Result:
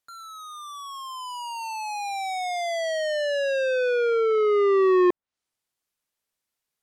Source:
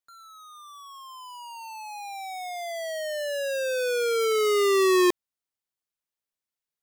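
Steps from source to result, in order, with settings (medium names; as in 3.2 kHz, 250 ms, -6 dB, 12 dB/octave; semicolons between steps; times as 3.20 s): low-pass that closes with the level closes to 1.4 kHz, closed at -23.5 dBFS; in parallel at +2.5 dB: compression, threshold -36 dBFS, peak gain reduction 15 dB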